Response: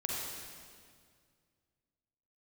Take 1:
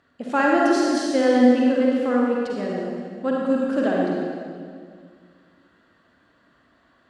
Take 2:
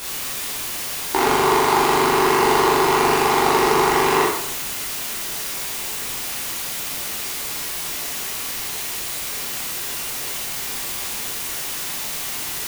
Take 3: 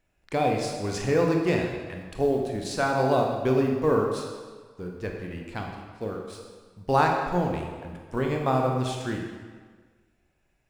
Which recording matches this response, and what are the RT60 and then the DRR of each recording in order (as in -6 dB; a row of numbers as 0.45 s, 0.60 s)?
1; 2.0 s, 0.75 s, 1.5 s; -3.5 dB, -7.0 dB, 1.0 dB